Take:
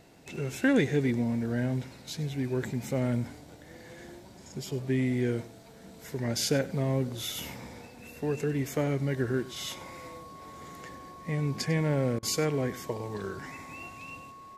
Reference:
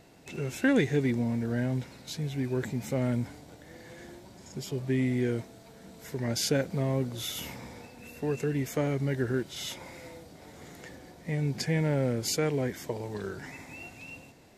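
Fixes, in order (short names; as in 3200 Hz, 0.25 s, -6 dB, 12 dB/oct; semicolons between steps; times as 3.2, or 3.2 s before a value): notch 1100 Hz, Q 30; interpolate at 12.19, 36 ms; inverse comb 98 ms -17.5 dB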